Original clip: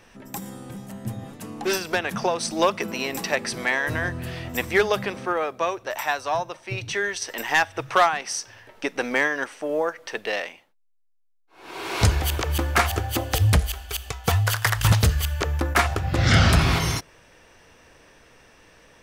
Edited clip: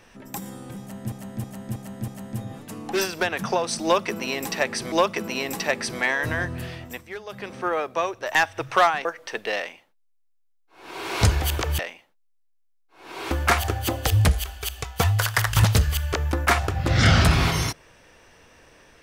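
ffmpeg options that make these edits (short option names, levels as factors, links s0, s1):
-filter_complex "[0:a]asplit=12[s0][s1][s2][s3][s4][s5][s6][s7][s8][s9][s10][s11];[s0]atrim=end=1.122[s12];[s1]atrim=start=0.798:end=1.122[s13];[s2]atrim=start=0.798:end=1.122[s14];[s3]atrim=start=0.798:end=1.122[s15];[s4]atrim=start=0.798:end=3.642[s16];[s5]atrim=start=2.558:end=4.68,asetpts=PTS-STARTPTS,afade=t=out:st=1.682:d=0.44:silence=0.149624[s17];[s6]atrim=start=4.68:end=4.91,asetpts=PTS-STARTPTS,volume=0.15[s18];[s7]atrim=start=4.91:end=5.992,asetpts=PTS-STARTPTS,afade=t=in:d=0.44:silence=0.149624[s19];[s8]atrim=start=7.538:end=8.242[s20];[s9]atrim=start=9.848:end=12.592[s21];[s10]atrim=start=10.378:end=11.902[s22];[s11]atrim=start=12.588[s23];[s12][s13]acrossfade=d=0.004:c1=hsin:c2=hsin[s24];[s24][s14]acrossfade=d=0.004:c1=hsin:c2=hsin[s25];[s25][s15]acrossfade=d=0.004:c1=hsin:c2=hsin[s26];[s26][s16]acrossfade=d=0.004:c1=hsin:c2=hsin[s27];[s17][s18][s19]concat=n=3:v=0:a=1[s28];[s27][s28]acrossfade=d=0.004:c1=hsin:c2=hsin[s29];[s29][s20]acrossfade=d=0.004:c1=hsin:c2=hsin[s30];[s30][s21]acrossfade=d=0.004:c1=hsin:c2=hsin[s31];[s31][s22]acrossfade=d=0.004:c1=hsin:c2=hsin[s32];[s32][s23]acrossfade=d=0.004:c1=hsin:c2=hsin"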